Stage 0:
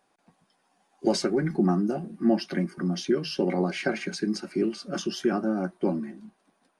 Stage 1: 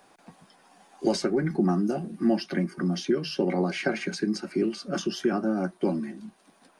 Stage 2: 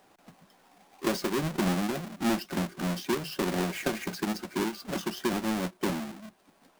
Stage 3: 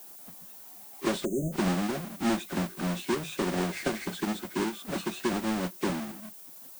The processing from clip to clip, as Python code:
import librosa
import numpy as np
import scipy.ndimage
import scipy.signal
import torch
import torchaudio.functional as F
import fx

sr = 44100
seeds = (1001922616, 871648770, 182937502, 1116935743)

y1 = fx.band_squash(x, sr, depth_pct=40)
y2 = fx.halfwave_hold(y1, sr)
y2 = y2 * librosa.db_to_amplitude(-7.5)
y3 = fx.freq_compress(y2, sr, knee_hz=1900.0, ratio=1.5)
y3 = fx.dmg_noise_colour(y3, sr, seeds[0], colour='violet', level_db=-48.0)
y3 = fx.spec_erase(y3, sr, start_s=1.25, length_s=0.28, low_hz=710.0, high_hz=6100.0)